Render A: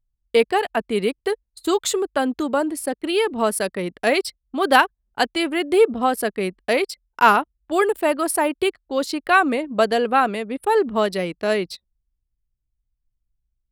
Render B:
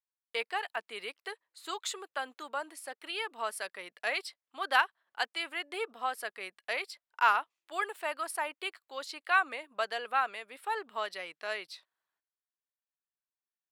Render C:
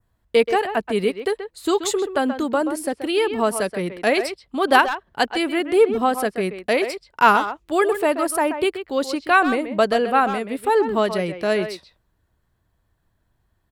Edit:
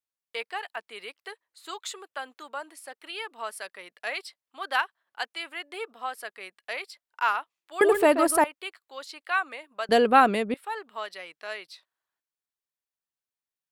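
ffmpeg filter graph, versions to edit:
-filter_complex "[1:a]asplit=3[s0][s1][s2];[s0]atrim=end=7.812[s3];[2:a]atrim=start=7.808:end=8.442[s4];[s1]atrim=start=8.438:end=9.892[s5];[0:a]atrim=start=9.888:end=10.542[s6];[s2]atrim=start=10.538[s7];[s3][s4]acrossfade=d=0.004:c1=hsin:c2=hsin[s8];[s8][s5]acrossfade=d=0.004:c1=hsin:c2=hsin[s9];[s9][s6]acrossfade=d=0.004:c1=hsin:c2=hsin[s10];[s10][s7]acrossfade=d=0.004:c1=hsin:c2=hsin"

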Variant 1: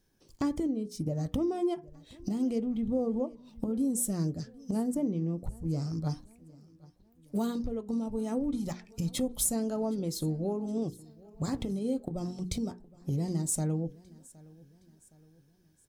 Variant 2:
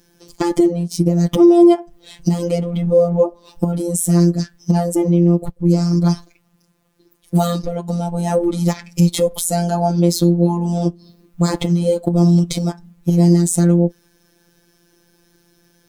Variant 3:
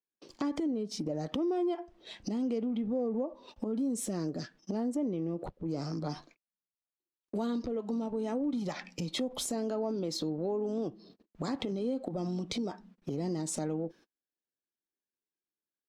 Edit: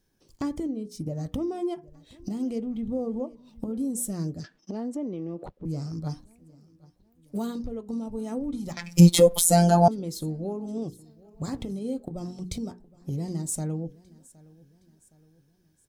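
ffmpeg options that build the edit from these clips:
-filter_complex "[0:a]asplit=3[s0][s1][s2];[s0]atrim=end=4.442[s3];[2:a]atrim=start=4.438:end=5.652[s4];[s1]atrim=start=5.648:end=8.772[s5];[1:a]atrim=start=8.768:end=9.882[s6];[s2]atrim=start=9.878[s7];[s3][s4]acrossfade=d=0.004:c1=hsin:c2=hsin[s8];[s8][s5]acrossfade=d=0.004:c1=hsin:c2=hsin[s9];[s9][s6]acrossfade=d=0.004:c1=hsin:c2=hsin[s10];[s10][s7]acrossfade=d=0.004:c1=hsin:c2=hsin"

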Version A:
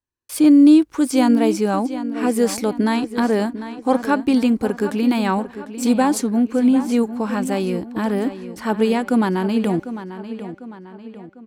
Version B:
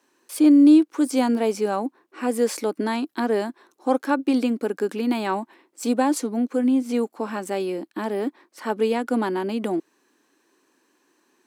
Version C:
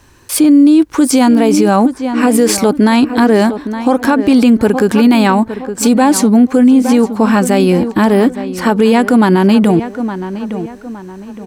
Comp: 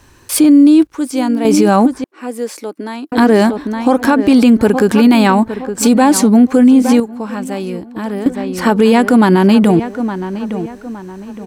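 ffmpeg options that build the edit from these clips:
-filter_complex "[0:a]asplit=2[s0][s1];[2:a]asplit=4[s2][s3][s4][s5];[s2]atrim=end=0.872[s6];[s0]atrim=start=0.868:end=1.452[s7];[s3]atrim=start=1.448:end=2.042[s8];[1:a]atrim=start=2.038:end=3.122[s9];[s4]atrim=start=3.118:end=7.002[s10];[s1]atrim=start=6.998:end=8.262[s11];[s5]atrim=start=8.258[s12];[s6][s7]acrossfade=d=0.004:c1=hsin:c2=hsin[s13];[s13][s8]acrossfade=d=0.004:c1=hsin:c2=hsin[s14];[s14][s9]acrossfade=d=0.004:c1=hsin:c2=hsin[s15];[s15][s10]acrossfade=d=0.004:c1=hsin:c2=hsin[s16];[s16][s11]acrossfade=d=0.004:c1=hsin:c2=hsin[s17];[s17][s12]acrossfade=d=0.004:c1=hsin:c2=hsin"

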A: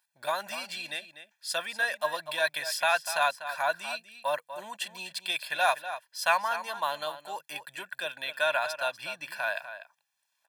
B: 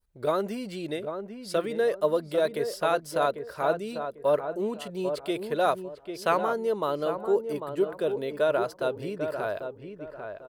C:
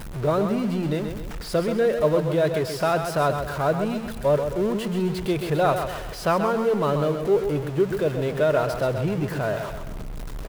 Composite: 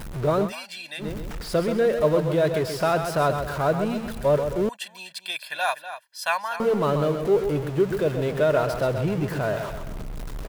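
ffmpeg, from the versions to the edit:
-filter_complex "[0:a]asplit=2[s0][s1];[2:a]asplit=3[s2][s3][s4];[s2]atrim=end=0.53[s5];[s0]atrim=start=0.43:end=1.07[s6];[s3]atrim=start=0.97:end=4.692[s7];[s1]atrim=start=4.688:end=6.602[s8];[s4]atrim=start=6.598[s9];[s5][s6]acrossfade=d=0.1:c1=tri:c2=tri[s10];[s10][s7]acrossfade=d=0.1:c1=tri:c2=tri[s11];[s11][s8]acrossfade=d=0.004:c1=hsin:c2=hsin[s12];[s12][s9]acrossfade=d=0.004:c1=hsin:c2=hsin"

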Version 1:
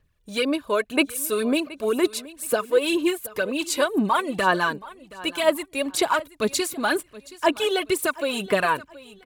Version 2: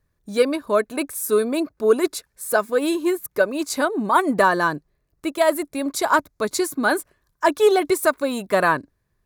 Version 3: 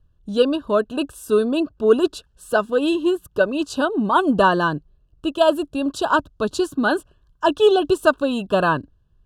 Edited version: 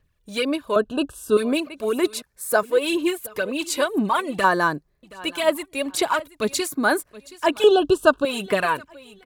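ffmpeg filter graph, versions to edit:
-filter_complex "[2:a]asplit=2[s0][s1];[1:a]asplit=3[s2][s3][s4];[0:a]asplit=6[s5][s6][s7][s8][s9][s10];[s5]atrim=end=0.762[s11];[s0]atrim=start=0.758:end=1.372[s12];[s6]atrim=start=1.368:end=2.222[s13];[s2]atrim=start=2.218:end=2.632[s14];[s7]atrim=start=2.628:end=4.442[s15];[s3]atrim=start=4.438:end=5.032[s16];[s8]atrim=start=5.028:end=6.682[s17];[s4]atrim=start=6.678:end=7.132[s18];[s9]atrim=start=7.128:end=7.642[s19];[s1]atrim=start=7.638:end=8.252[s20];[s10]atrim=start=8.248[s21];[s11][s12]acrossfade=d=0.004:c1=hsin:c2=hsin[s22];[s22][s13]acrossfade=d=0.004:c1=hsin:c2=hsin[s23];[s23][s14]acrossfade=d=0.004:c1=hsin:c2=hsin[s24];[s24][s15]acrossfade=d=0.004:c1=hsin:c2=hsin[s25];[s25][s16]acrossfade=d=0.004:c1=hsin:c2=hsin[s26];[s26][s17]acrossfade=d=0.004:c1=hsin:c2=hsin[s27];[s27][s18]acrossfade=d=0.004:c1=hsin:c2=hsin[s28];[s28][s19]acrossfade=d=0.004:c1=hsin:c2=hsin[s29];[s29][s20]acrossfade=d=0.004:c1=hsin:c2=hsin[s30];[s30][s21]acrossfade=d=0.004:c1=hsin:c2=hsin"

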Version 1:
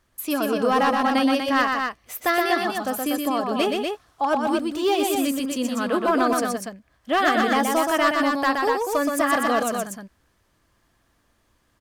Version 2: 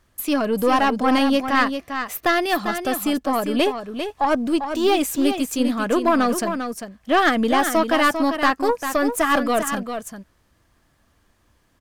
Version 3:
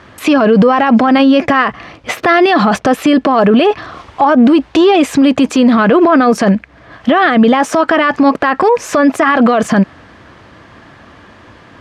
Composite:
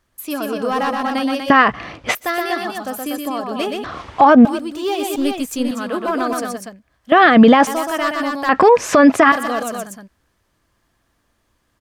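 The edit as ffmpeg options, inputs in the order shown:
-filter_complex "[2:a]asplit=4[s0][s1][s2][s3];[0:a]asplit=6[s4][s5][s6][s7][s8][s9];[s4]atrim=end=1.502[s10];[s0]atrim=start=1.498:end=2.152[s11];[s5]atrim=start=2.148:end=3.842[s12];[s1]atrim=start=3.838:end=4.452[s13];[s6]atrim=start=4.448:end=5.162[s14];[1:a]atrim=start=5.158:end=5.712[s15];[s7]atrim=start=5.708:end=7.122[s16];[s2]atrim=start=7.118:end=7.672[s17];[s8]atrim=start=7.668:end=8.492[s18];[s3]atrim=start=8.488:end=9.322[s19];[s9]atrim=start=9.318[s20];[s10][s11]acrossfade=d=0.004:c1=hsin:c2=hsin[s21];[s21][s12]acrossfade=d=0.004:c1=hsin:c2=hsin[s22];[s22][s13]acrossfade=d=0.004:c1=hsin:c2=hsin[s23];[s23][s14]acrossfade=d=0.004:c1=hsin:c2=hsin[s24];[s24][s15]acrossfade=d=0.004:c1=hsin:c2=hsin[s25];[s25][s16]acrossfade=d=0.004:c1=hsin:c2=hsin[s26];[s26][s17]acrossfade=d=0.004:c1=hsin:c2=hsin[s27];[s27][s18]acrossfade=d=0.004:c1=hsin:c2=hsin[s28];[s28][s19]acrossfade=d=0.004:c1=hsin:c2=hsin[s29];[s29][s20]acrossfade=d=0.004:c1=hsin:c2=hsin"

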